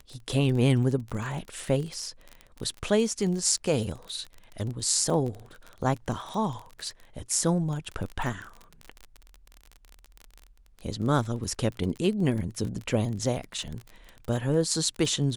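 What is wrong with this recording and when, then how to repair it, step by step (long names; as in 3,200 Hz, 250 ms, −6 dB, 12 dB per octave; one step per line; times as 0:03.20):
surface crackle 28 per second −32 dBFS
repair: click removal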